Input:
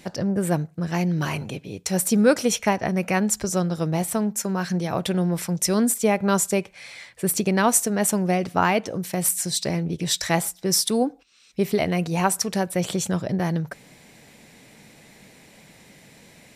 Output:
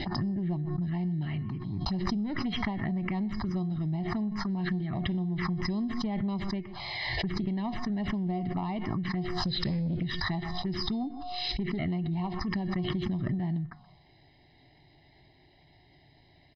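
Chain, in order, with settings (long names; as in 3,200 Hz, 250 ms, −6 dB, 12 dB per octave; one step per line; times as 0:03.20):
one-sided soft clipper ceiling −12.5 dBFS
tilt shelving filter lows +6 dB, about 890 Hz
comb filter 1 ms, depth 97%
0:09.45–0:10.03: leveller curve on the samples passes 2
downward compressor 16 to 1, threshold −17 dBFS, peak gain reduction 10 dB
Chebyshev low-pass with heavy ripple 5,100 Hz, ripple 6 dB
tuned comb filter 360 Hz, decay 0.78 s, mix 70%
phaser swept by the level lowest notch 180 Hz, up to 1,500 Hz, full sweep at −32 dBFS
single-tap delay 125 ms −23 dB
background raised ahead of every attack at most 24 dB per second
level +5.5 dB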